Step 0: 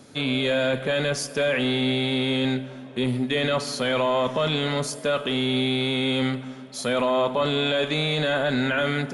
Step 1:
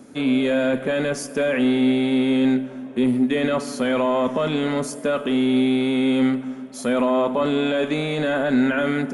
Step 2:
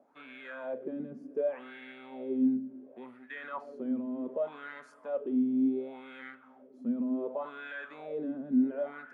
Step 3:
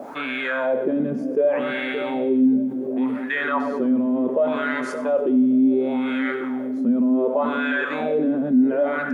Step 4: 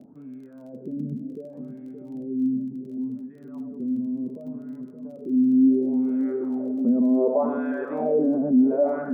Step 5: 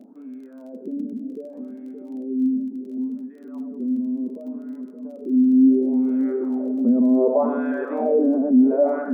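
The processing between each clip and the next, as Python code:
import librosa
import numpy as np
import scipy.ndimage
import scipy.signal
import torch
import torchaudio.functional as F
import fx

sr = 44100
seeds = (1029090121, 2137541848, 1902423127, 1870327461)

y1 = fx.graphic_eq(x, sr, hz=(125, 250, 4000), db=(-7, 8, -9))
y1 = y1 * 10.0 ** (1.0 / 20.0)
y2 = fx.wah_lfo(y1, sr, hz=0.68, low_hz=220.0, high_hz=1700.0, q=5.4)
y2 = y2 * 10.0 ** (-5.0 / 20.0)
y3 = fx.echo_split(y2, sr, split_hz=480.0, low_ms=572, high_ms=97, feedback_pct=52, wet_db=-13.5)
y3 = fx.env_flatten(y3, sr, amount_pct=50)
y3 = y3 * 10.0 ** (8.0 / 20.0)
y4 = fx.filter_sweep_lowpass(y3, sr, from_hz=170.0, to_hz=660.0, start_s=5.14, end_s=6.81, q=1.3)
y4 = fx.dmg_crackle(y4, sr, seeds[0], per_s=21.0, level_db=-44.0)
y4 = fx.notch(y4, sr, hz=540.0, q=15.0)
y4 = y4 * 10.0 ** (-2.0 / 20.0)
y5 = fx.brickwall_highpass(y4, sr, low_hz=190.0)
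y5 = y5 * 10.0 ** (3.0 / 20.0)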